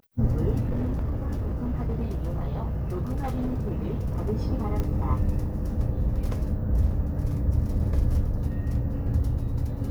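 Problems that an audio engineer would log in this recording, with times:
0.6–4.31 clipped -23.5 dBFS
4.8 pop -18 dBFS

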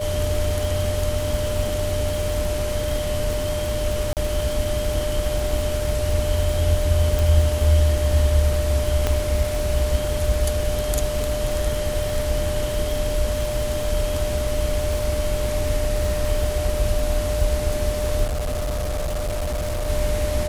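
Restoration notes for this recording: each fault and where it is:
crackle 110/s -26 dBFS
tone 600 Hz -25 dBFS
4.13–4.17 gap 38 ms
7.19 pop
9.07 pop -7 dBFS
18.24–19.9 clipped -21.5 dBFS

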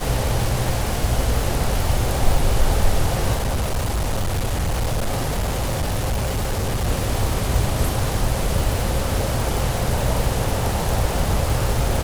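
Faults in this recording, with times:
crackle 540/s -24 dBFS
3.34–6.88 clipped -18 dBFS

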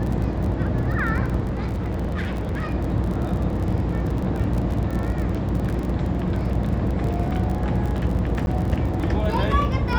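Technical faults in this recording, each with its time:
buzz 60 Hz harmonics 18 -27 dBFS
crackle 33/s -27 dBFS
1.42–2.72 clipped -22 dBFS
8.46–8.47 gap 11 ms

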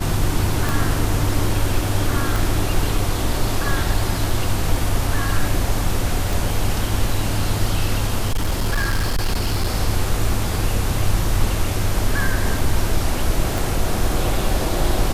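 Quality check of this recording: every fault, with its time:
0.69 pop
2.36 pop
6.33 pop
8.27–9.68 clipped -15 dBFS
13.58 pop

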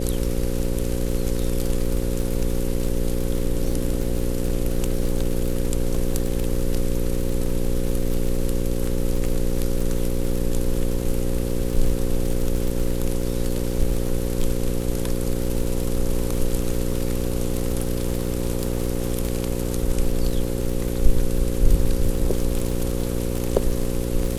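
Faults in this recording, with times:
buzz 60 Hz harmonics 9 -26 dBFS
crackle 42/s -25 dBFS

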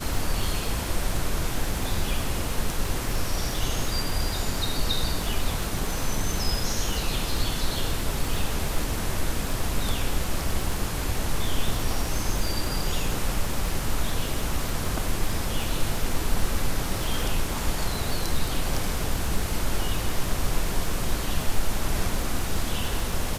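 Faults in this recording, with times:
crackle 50/s -28 dBFS

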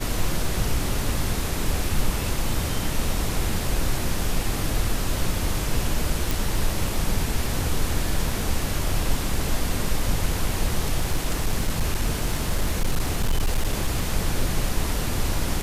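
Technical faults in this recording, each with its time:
6.31 pop
11–14.14 clipped -16.5 dBFS

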